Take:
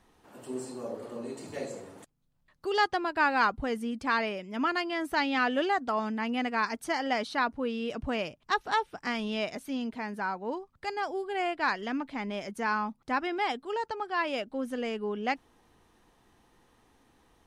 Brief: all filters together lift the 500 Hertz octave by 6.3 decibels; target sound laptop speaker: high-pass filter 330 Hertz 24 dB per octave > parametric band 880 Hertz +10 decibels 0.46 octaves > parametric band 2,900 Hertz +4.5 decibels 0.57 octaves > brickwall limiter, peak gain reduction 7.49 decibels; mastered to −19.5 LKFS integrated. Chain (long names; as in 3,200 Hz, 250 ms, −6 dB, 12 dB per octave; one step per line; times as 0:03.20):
high-pass filter 330 Hz 24 dB per octave
parametric band 500 Hz +7 dB
parametric band 880 Hz +10 dB 0.46 octaves
parametric band 2,900 Hz +4.5 dB 0.57 octaves
level +7.5 dB
brickwall limiter −6.5 dBFS